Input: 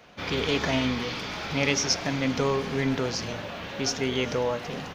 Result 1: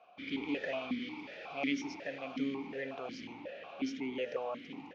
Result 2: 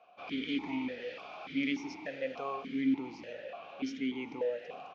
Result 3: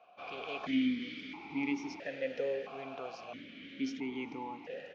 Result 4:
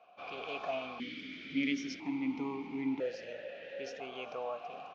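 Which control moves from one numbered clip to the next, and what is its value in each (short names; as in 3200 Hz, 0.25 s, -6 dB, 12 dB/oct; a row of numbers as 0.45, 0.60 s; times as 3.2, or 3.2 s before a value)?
vowel sequencer, rate: 5.5, 3.4, 1.5, 1 Hz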